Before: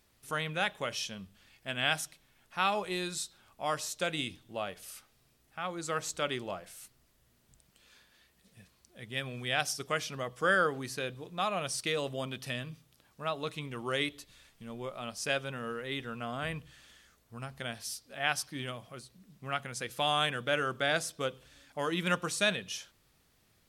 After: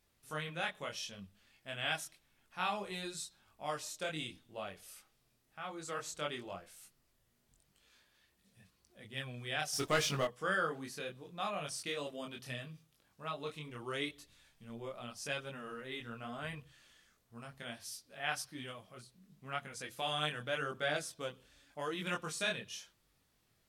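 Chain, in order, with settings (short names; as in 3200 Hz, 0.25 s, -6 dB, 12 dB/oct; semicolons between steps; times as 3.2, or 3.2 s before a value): 9.73–10.25 sample leveller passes 3; chorus voices 2, 0.84 Hz, delay 23 ms, depth 3.5 ms; gain -3.5 dB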